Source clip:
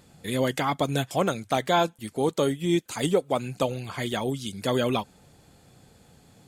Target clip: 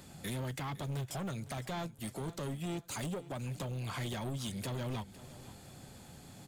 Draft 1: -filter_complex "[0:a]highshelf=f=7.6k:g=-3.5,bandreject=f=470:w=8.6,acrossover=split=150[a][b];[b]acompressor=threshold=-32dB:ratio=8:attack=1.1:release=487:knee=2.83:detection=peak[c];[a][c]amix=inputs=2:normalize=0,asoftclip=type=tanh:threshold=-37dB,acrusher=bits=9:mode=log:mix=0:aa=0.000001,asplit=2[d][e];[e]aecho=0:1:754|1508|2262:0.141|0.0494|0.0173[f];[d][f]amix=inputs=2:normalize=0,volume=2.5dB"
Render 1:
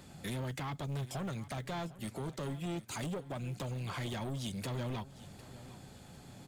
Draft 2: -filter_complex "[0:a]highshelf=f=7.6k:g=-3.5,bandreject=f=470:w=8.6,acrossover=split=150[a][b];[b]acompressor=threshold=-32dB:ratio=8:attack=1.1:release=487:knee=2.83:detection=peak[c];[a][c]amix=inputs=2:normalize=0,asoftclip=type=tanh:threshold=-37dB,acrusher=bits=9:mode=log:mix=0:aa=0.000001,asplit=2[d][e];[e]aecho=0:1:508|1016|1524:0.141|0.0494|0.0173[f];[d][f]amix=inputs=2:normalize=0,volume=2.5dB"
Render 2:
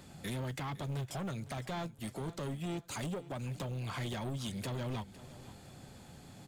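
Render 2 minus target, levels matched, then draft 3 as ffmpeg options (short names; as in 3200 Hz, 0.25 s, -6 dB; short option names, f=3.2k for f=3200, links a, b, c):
8000 Hz band -2.5 dB
-filter_complex "[0:a]highshelf=f=7.6k:g=3.5,bandreject=f=470:w=8.6,acrossover=split=150[a][b];[b]acompressor=threshold=-32dB:ratio=8:attack=1.1:release=487:knee=2.83:detection=peak[c];[a][c]amix=inputs=2:normalize=0,asoftclip=type=tanh:threshold=-37dB,acrusher=bits=9:mode=log:mix=0:aa=0.000001,asplit=2[d][e];[e]aecho=0:1:508|1016|1524:0.141|0.0494|0.0173[f];[d][f]amix=inputs=2:normalize=0,volume=2.5dB"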